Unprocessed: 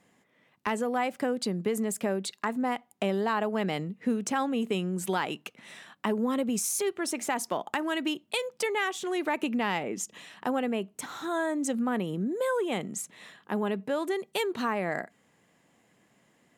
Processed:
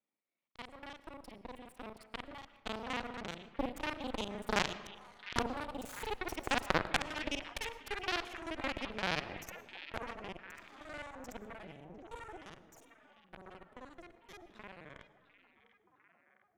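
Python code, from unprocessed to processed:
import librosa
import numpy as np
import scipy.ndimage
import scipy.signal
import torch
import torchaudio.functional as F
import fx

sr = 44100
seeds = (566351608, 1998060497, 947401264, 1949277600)

y = fx.local_reverse(x, sr, ms=39.0)
y = fx.doppler_pass(y, sr, speed_mps=40, closest_m=30.0, pass_at_s=6.68)
y = scipy.signal.sosfilt(scipy.signal.butter(2, 190.0, 'highpass', fs=sr, output='sos'), y)
y = fx.high_shelf(y, sr, hz=10000.0, db=-9.0)
y = fx.rider(y, sr, range_db=5, speed_s=0.5)
y = fx.cheby_harmonics(y, sr, harmonics=(2, 3, 4, 6), levels_db=(-7, -10, -27, -34), full_scale_db=-20.0)
y = fx.echo_stepped(y, sr, ms=702, hz=2700.0, octaves=-0.7, feedback_pct=70, wet_db=-10)
y = fx.rev_freeverb(y, sr, rt60_s=1.3, hf_ratio=0.45, predelay_ms=70, drr_db=15.0)
y = fx.doppler_dist(y, sr, depth_ms=0.5)
y = y * librosa.db_to_amplitude(12.5)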